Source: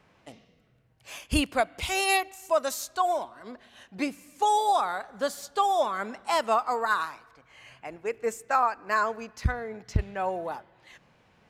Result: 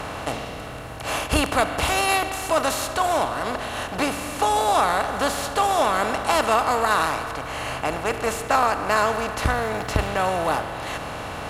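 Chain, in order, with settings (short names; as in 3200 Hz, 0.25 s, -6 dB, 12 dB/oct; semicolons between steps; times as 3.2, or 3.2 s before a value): per-bin compression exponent 0.4; 9.51–10.07 crackle 260/s -33 dBFS; MP3 96 kbps 48000 Hz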